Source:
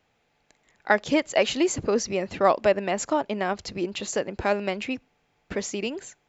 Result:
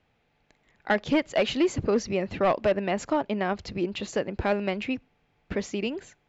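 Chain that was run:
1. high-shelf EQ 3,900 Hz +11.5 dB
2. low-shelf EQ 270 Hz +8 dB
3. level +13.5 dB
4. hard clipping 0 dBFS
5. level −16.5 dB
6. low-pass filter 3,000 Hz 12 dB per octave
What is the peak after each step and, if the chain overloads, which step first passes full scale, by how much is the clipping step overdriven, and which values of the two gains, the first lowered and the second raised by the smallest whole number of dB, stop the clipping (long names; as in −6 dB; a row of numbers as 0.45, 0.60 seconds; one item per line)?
−4.5, −4.0, +9.5, 0.0, −16.5, −16.0 dBFS
step 3, 9.5 dB
step 3 +3.5 dB, step 5 −6.5 dB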